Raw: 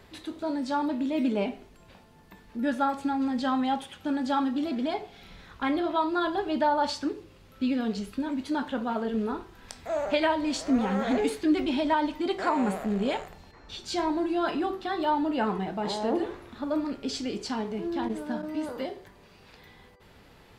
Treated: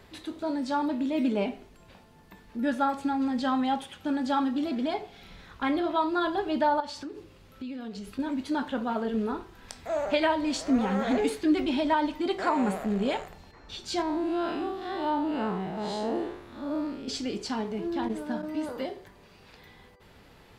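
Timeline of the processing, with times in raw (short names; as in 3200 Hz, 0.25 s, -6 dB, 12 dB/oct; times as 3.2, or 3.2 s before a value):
6.8–8.19 compressor 4:1, threshold -36 dBFS
14.02–17.08 time blur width 0.126 s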